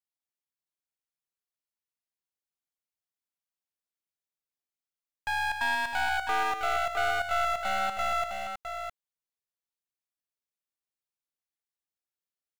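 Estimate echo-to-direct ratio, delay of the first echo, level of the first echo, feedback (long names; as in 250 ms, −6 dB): −4.0 dB, 231 ms, −7.0 dB, repeats not evenly spaced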